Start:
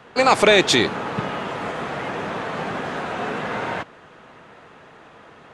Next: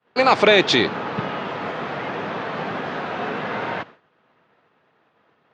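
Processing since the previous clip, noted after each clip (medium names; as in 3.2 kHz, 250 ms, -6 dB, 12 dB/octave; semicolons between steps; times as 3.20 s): high-pass 97 Hz; expander -35 dBFS; low-pass 5.2 kHz 24 dB/octave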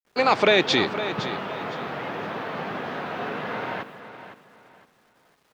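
bit crusher 10-bit; on a send: feedback delay 511 ms, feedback 29%, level -12 dB; on the sum: trim -4 dB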